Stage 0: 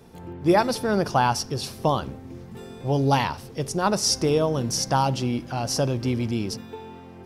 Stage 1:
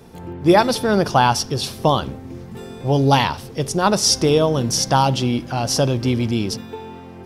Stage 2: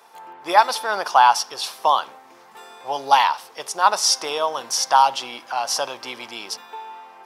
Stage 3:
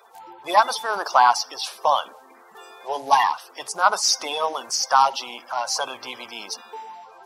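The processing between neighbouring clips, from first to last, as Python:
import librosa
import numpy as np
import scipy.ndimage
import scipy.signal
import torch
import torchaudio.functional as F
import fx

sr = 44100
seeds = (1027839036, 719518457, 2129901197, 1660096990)

y1 = fx.dynamic_eq(x, sr, hz=3400.0, q=3.5, threshold_db=-48.0, ratio=4.0, max_db=6)
y1 = F.gain(torch.from_numpy(y1), 5.5).numpy()
y2 = fx.highpass_res(y1, sr, hz=930.0, q=2.1)
y2 = F.gain(torch.from_numpy(y2), -2.0).numpy()
y3 = fx.spec_quant(y2, sr, step_db=30)
y3 = fx.hum_notches(y3, sr, base_hz=60, count=2)
y3 = F.gain(torch.from_numpy(y3), -1.0).numpy()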